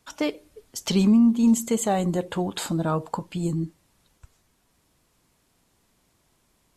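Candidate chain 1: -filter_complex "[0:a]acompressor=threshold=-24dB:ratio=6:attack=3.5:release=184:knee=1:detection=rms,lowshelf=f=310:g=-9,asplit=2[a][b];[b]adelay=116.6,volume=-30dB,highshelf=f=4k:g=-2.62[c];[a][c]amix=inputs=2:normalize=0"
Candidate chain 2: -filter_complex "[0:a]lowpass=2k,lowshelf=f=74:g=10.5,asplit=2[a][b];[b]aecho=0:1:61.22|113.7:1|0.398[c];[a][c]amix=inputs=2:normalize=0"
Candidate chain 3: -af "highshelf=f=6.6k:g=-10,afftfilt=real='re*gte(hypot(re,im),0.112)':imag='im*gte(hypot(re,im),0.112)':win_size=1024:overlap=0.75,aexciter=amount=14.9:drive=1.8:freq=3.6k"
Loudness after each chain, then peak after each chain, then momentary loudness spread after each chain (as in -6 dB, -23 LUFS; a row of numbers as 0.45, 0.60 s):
-34.0, -19.0, -23.5 LUFS; -17.5, -3.0, -11.0 dBFS; 7, 13, 12 LU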